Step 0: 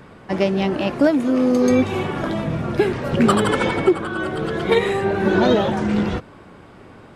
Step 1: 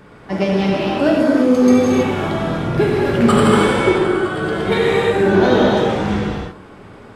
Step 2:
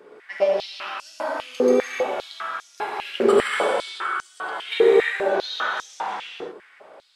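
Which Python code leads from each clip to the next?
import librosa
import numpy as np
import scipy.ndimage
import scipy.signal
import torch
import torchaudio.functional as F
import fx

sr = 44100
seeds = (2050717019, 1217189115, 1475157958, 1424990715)

y1 = fx.rev_gated(x, sr, seeds[0], gate_ms=360, shape='flat', drr_db=-4.0)
y1 = y1 * 10.0 ** (-1.5 / 20.0)
y2 = fx.filter_held_highpass(y1, sr, hz=5.0, low_hz=410.0, high_hz=6000.0)
y2 = y2 * 10.0 ** (-8.5 / 20.0)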